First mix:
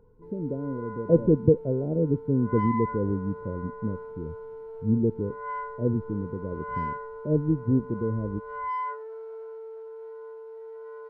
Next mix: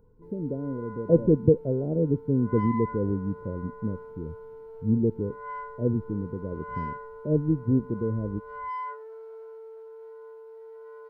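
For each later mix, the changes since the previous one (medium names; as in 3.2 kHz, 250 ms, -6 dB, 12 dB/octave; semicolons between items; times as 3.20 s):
background -3.5 dB; master: add treble shelf 6.3 kHz +10.5 dB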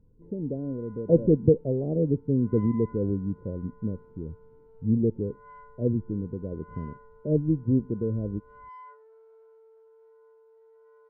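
background -12.0 dB; master: add treble shelf 6.3 kHz -10.5 dB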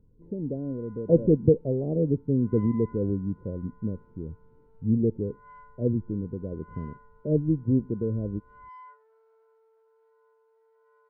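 background: add high-pass 700 Hz 12 dB/octave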